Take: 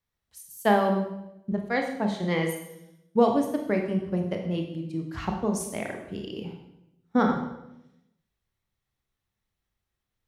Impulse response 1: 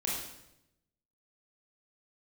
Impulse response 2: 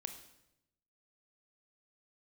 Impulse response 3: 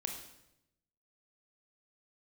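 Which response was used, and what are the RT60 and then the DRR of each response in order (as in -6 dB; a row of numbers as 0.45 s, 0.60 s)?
3; 0.85 s, 0.85 s, 0.85 s; -5.0 dB, 6.5 dB, 2.5 dB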